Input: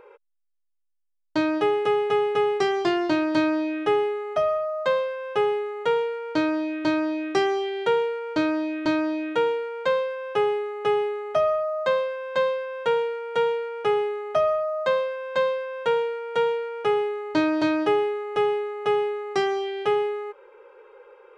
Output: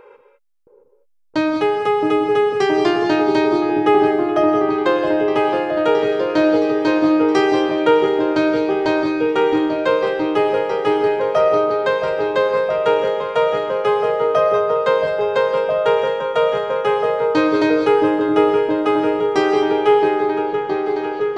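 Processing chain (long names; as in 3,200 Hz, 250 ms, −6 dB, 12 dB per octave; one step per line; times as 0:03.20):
echo whose low-pass opens from repeat to repeat 669 ms, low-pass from 400 Hz, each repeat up 1 octave, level 0 dB
reverb whose tail is shaped and stops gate 230 ms rising, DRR 5.5 dB
level +4.5 dB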